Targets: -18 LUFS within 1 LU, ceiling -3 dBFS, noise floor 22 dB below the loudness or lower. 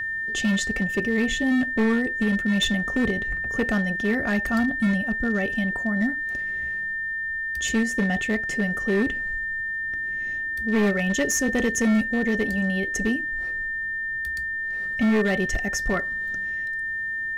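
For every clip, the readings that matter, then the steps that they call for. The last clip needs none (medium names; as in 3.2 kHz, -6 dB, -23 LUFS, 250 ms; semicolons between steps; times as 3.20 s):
clipped samples 2.0%; clipping level -16.5 dBFS; steady tone 1.8 kHz; tone level -26 dBFS; loudness -24.0 LUFS; peak level -16.5 dBFS; loudness target -18.0 LUFS
-> clip repair -16.5 dBFS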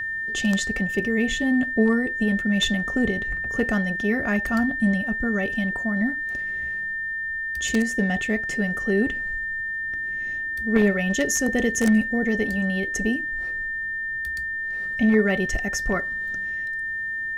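clipped samples 0.0%; steady tone 1.8 kHz; tone level -26 dBFS
-> band-stop 1.8 kHz, Q 30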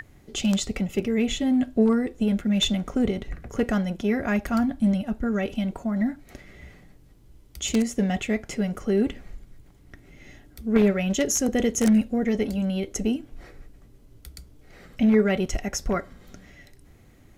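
steady tone not found; loudness -24.5 LUFS; peak level -7.0 dBFS; loudness target -18.0 LUFS
-> trim +6.5 dB; peak limiter -3 dBFS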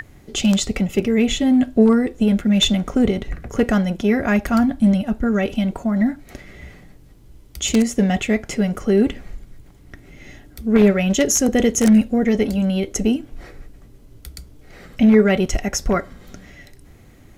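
loudness -18.5 LUFS; peak level -3.0 dBFS; noise floor -47 dBFS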